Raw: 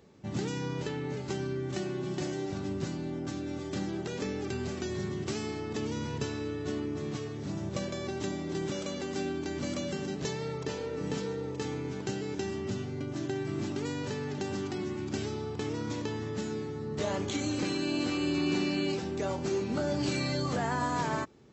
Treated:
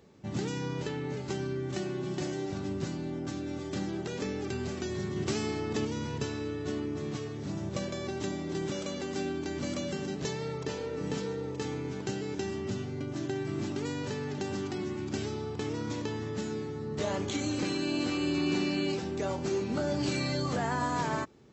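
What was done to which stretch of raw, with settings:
5.16–5.85 gain +3 dB

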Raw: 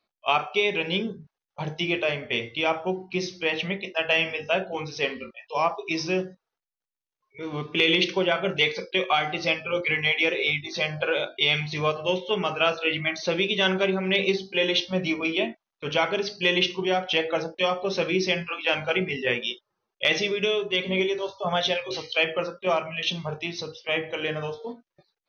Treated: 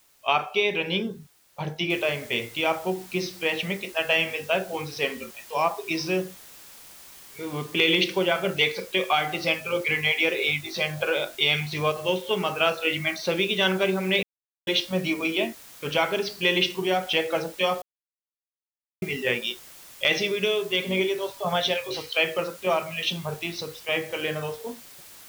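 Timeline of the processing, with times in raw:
1.9 noise floor step -61 dB -47 dB
14.23–14.67 mute
17.82–19.02 mute

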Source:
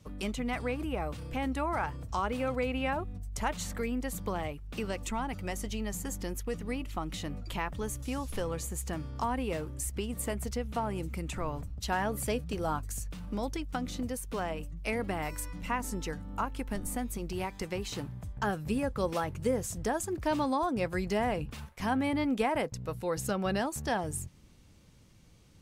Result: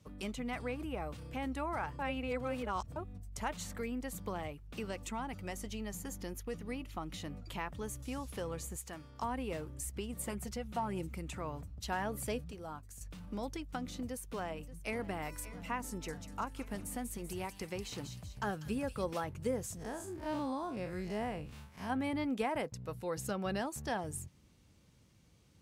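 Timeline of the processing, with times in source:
1.99–2.96 reverse
5.92–7.2 notch 7900 Hz, Q 11
8.76–9.22 low shelf 430 Hz -9.5 dB
10.19–11.07 comb 5.5 ms, depth 57%
12.51–13.01 gain -7.5 dB
14.08–15.06 echo throw 0.58 s, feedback 65%, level -15.5 dB
15.89–19.04 thin delay 0.193 s, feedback 45%, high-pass 3500 Hz, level -4 dB
19.77–21.9 time blur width 98 ms
whole clip: HPF 50 Hz; gain -5.5 dB

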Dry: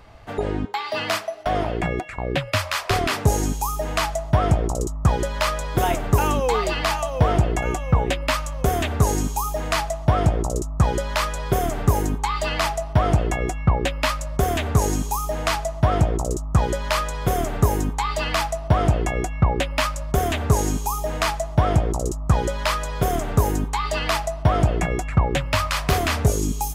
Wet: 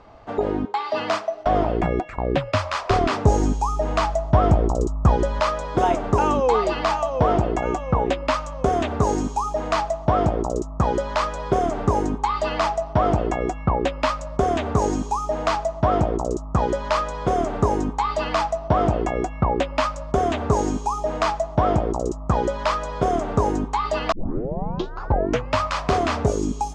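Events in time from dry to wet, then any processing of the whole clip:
1.28–5.4 low shelf 110 Hz +10 dB
24.12 tape start 1.42 s
whole clip: LPF 7100 Hz 24 dB/oct; band shelf 510 Hz +8 dB 3 oct; gain -5 dB

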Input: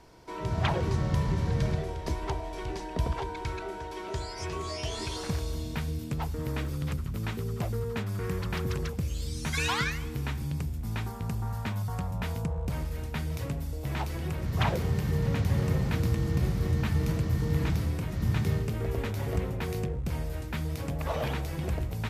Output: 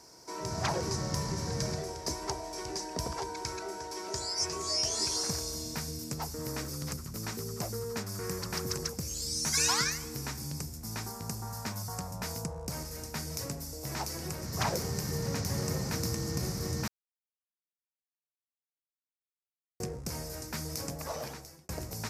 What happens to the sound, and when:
16.88–19.8 mute
20.82–21.69 fade out
whole clip: HPF 230 Hz 6 dB/oct; resonant high shelf 4200 Hz +8.5 dB, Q 3; gain -1 dB

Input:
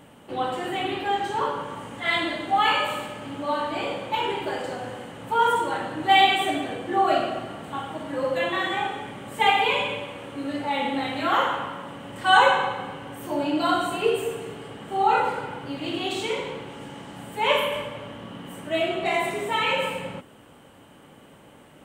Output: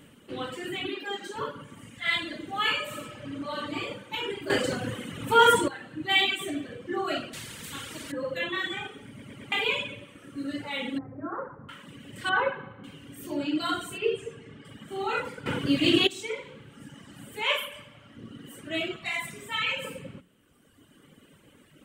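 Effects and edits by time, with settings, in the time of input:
0.88–1.36 steep high-pass 190 Hz
1.9–2.31 bell 330 Hz -7 dB
2.82–3.75 reverb throw, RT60 2.3 s, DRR 1 dB
4.5–5.68 gain +10.5 dB
7.33–8.12 spectral compressor 2:1
9.08 stutter in place 0.11 s, 4 plays
10.98–11.69 Gaussian blur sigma 7.6 samples
12.29–12.84 LPF 1600 Hz
13.98–14.65 air absorption 70 m
15.46–16.07 gain +11.5 dB
17.42–18.17 resonant low shelf 540 Hz -6.5 dB, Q 1.5
18.96–19.85 bell 400 Hz -11.5 dB 0.79 oct
whole clip: bell 790 Hz -14.5 dB 0.92 oct; notches 60/120/180 Hz; reverb removal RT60 1.7 s

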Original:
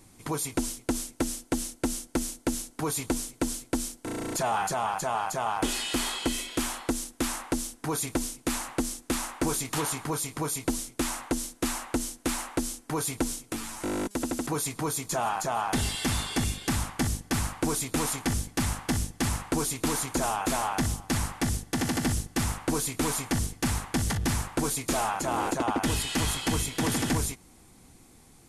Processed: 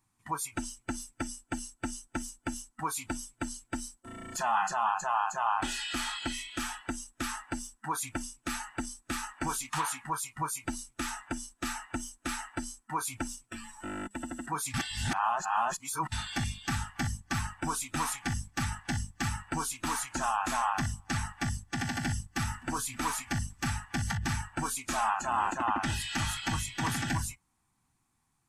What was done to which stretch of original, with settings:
14.74–16.12 reverse
21.91–22.48 echo throw 0.57 s, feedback 45%, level -15.5 dB
whole clip: notch 2100 Hz, Q 12; spectral noise reduction 17 dB; graphic EQ 125/500/1000/2000/8000 Hz +6/-10/+12/+6/+4 dB; gain -7 dB

